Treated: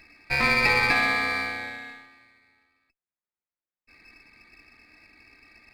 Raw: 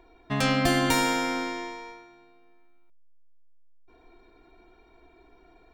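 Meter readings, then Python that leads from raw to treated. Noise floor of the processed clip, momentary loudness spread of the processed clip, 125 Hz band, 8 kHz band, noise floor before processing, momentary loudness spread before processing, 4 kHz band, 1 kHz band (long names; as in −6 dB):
below −85 dBFS, 15 LU, −5.5 dB, −9.0 dB, −58 dBFS, 17 LU, 0.0 dB, 0.0 dB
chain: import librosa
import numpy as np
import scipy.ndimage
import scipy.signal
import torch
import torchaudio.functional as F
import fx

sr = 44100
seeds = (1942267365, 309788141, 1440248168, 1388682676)

y = fx.notch_comb(x, sr, f0_hz=180.0)
y = fx.freq_invert(y, sr, carrier_hz=2600)
y = fx.running_max(y, sr, window=5)
y = F.gain(torch.from_numpy(y), 4.0).numpy()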